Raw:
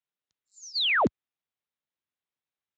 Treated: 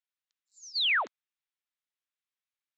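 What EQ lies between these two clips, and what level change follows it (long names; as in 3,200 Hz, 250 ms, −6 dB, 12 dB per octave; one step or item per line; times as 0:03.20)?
high-pass filter 1,300 Hz 12 dB per octave
high-frequency loss of the air 53 metres
0.0 dB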